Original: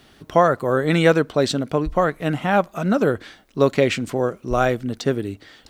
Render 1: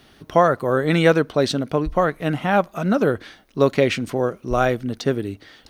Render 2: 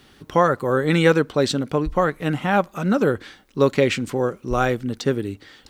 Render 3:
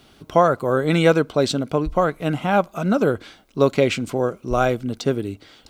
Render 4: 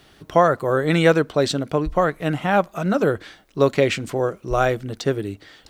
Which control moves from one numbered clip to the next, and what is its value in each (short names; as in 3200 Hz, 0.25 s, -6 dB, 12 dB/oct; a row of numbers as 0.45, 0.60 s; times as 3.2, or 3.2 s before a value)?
notch, frequency: 7500, 660, 1800, 240 Hz